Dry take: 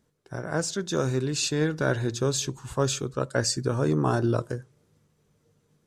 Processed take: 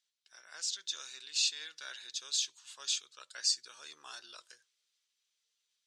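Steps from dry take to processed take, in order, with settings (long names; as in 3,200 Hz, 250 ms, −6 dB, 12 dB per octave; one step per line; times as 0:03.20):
four-pole ladder band-pass 4,400 Hz, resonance 30%
level +9 dB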